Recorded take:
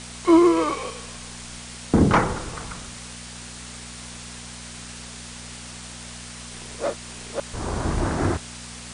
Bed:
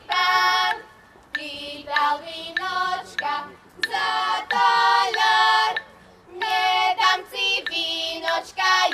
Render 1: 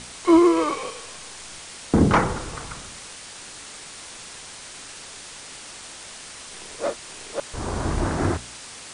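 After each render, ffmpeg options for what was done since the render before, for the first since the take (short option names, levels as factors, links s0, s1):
-af "bandreject=f=60:t=h:w=4,bandreject=f=120:t=h:w=4,bandreject=f=180:t=h:w=4,bandreject=f=240:t=h:w=4"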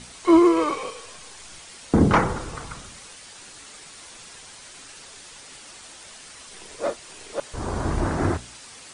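-af "afftdn=nr=6:nf=-41"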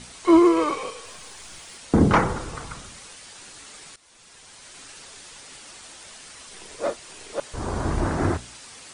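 -filter_complex "[0:a]asettb=1/sr,asplit=3[s0][s1][s2];[s0]atrim=end=1.054[s3];[s1]atrim=start=1.05:end=1.78,asetpts=PTS-STARTPTS,afade=t=in:d=0.004:c=qsin,afade=t=out:st=0.726:d=0.004:c=qsin,aeval=exprs='val(0)+0.5*0.00158*sgn(val(0))':c=same[s4];[s2]atrim=start=1.776[s5];[s3][s4]acrossfade=d=0.004:c1=hsin:c2=qsin[s6];[s6][s5]acrossfade=d=0.004:c1=qsin:c2=hsin,asplit=2[s7][s8];[s7]atrim=end=3.96,asetpts=PTS-STARTPTS,afade=t=out:st=3.956:d=0.004:c=hsin:silence=0.133352[s9];[s8]atrim=start=3.96,asetpts=PTS-STARTPTS,afade=t=in:d=0.87:silence=0.133352[s10];[s9][s10]concat=n=2:v=0:a=1"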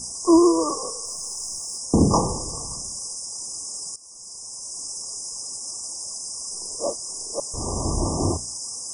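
-af "afftfilt=real='re*(1-between(b*sr/4096,1200,4900))':imag='im*(1-between(b*sr/4096,1200,4900))':win_size=4096:overlap=0.75,highshelf=f=3100:t=q:w=1.5:g=12"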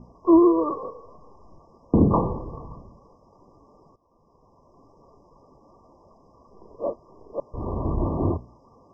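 -af "lowpass=f=1600:w=0.5412,lowpass=f=1600:w=1.3066,equalizer=f=800:w=4.1:g=-5.5"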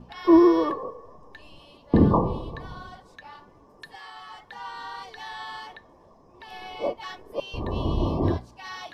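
-filter_complex "[1:a]volume=0.1[s0];[0:a][s0]amix=inputs=2:normalize=0"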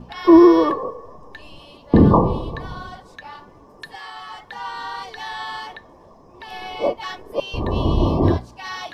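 -af "volume=2.24,alimiter=limit=0.708:level=0:latency=1"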